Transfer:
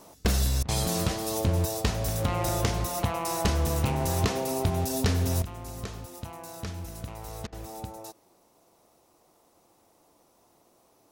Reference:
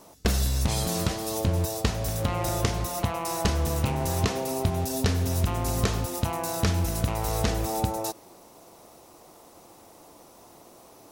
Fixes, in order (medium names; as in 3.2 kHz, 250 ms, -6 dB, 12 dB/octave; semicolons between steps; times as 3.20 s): clip repair -17.5 dBFS; interpolate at 0.63/7.47 s, 53 ms; gain correction +12 dB, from 5.42 s